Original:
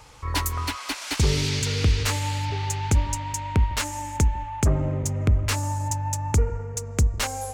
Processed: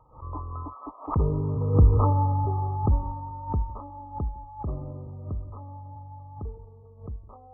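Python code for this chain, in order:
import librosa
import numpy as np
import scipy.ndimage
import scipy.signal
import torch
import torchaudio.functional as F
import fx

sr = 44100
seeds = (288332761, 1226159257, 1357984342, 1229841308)

p1 = fx.doppler_pass(x, sr, speed_mps=11, closest_m=2.4, pass_at_s=2.03)
p2 = fx.rider(p1, sr, range_db=4, speed_s=0.5)
p3 = p1 + (p2 * librosa.db_to_amplitude(0.0))
p4 = fx.brickwall_lowpass(p3, sr, high_hz=1300.0)
p5 = fx.pre_swell(p4, sr, db_per_s=150.0)
y = p5 * librosa.db_to_amplitude(2.0)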